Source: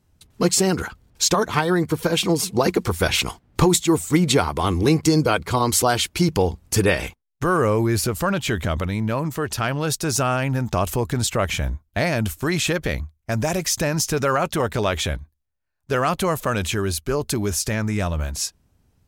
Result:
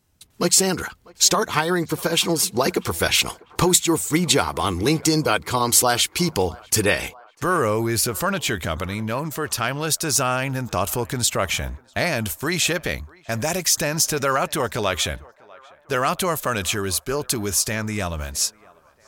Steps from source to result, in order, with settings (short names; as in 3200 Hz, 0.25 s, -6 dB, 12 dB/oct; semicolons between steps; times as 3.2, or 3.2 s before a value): tilt +1.5 dB/oct; narrowing echo 0.646 s, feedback 67%, band-pass 920 Hz, level -22 dB